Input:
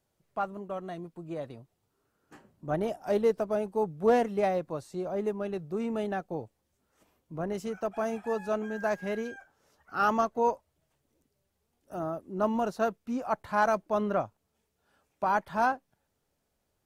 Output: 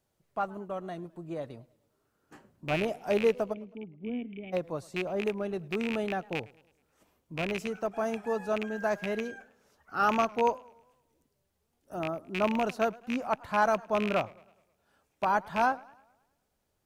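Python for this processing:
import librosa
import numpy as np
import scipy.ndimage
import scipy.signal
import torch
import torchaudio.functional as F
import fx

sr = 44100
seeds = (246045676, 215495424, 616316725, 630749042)

y = fx.rattle_buzz(x, sr, strikes_db=-36.0, level_db=-22.0)
y = fx.formant_cascade(y, sr, vowel='i', at=(3.52, 4.52), fade=0.02)
y = fx.echo_warbled(y, sr, ms=106, feedback_pct=49, rate_hz=2.8, cents=142, wet_db=-23.5)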